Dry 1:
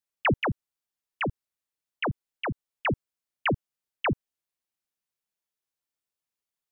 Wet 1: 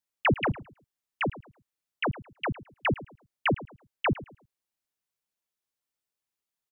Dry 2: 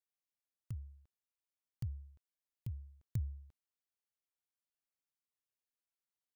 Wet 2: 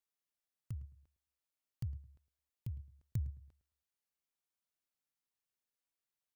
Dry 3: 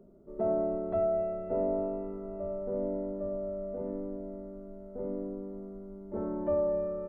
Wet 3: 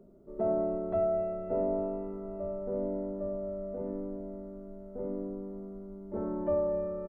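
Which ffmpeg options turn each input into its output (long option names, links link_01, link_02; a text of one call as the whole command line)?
ffmpeg -i in.wav -filter_complex "[0:a]asplit=2[link_01][link_02];[link_02]adelay=108,lowpass=frequency=2300:poles=1,volume=-16.5dB,asplit=2[link_03][link_04];[link_04]adelay=108,lowpass=frequency=2300:poles=1,volume=0.28,asplit=2[link_05][link_06];[link_06]adelay=108,lowpass=frequency=2300:poles=1,volume=0.28[link_07];[link_01][link_03][link_05][link_07]amix=inputs=4:normalize=0" out.wav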